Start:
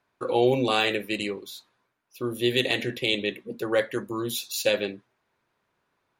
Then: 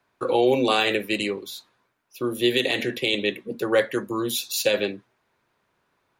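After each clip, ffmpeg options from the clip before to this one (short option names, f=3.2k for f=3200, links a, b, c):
-filter_complex "[0:a]acrossover=split=190|950|5100[a][b][c][d];[a]acompressor=threshold=-44dB:ratio=6[e];[e][b][c][d]amix=inputs=4:normalize=0,alimiter=level_in=12.5dB:limit=-1dB:release=50:level=0:latency=1,volume=-8.5dB"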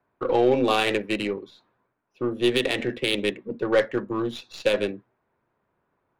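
-af "aeval=exprs='0.355*(cos(1*acos(clip(val(0)/0.355,-1,1)))-cos(1*PI/2))+0.01*(cos(6*acos(clip(val(0)/0.355,-1,1)))-cos(6*PI/2))':c=same,adynamicsmooth=sensitivity=1:basefreq=1.6k"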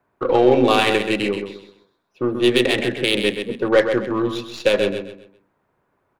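-af "aecho=1:1:130|260|390|520:0.422|0.135|0.0432|0.0138,volume=5dB"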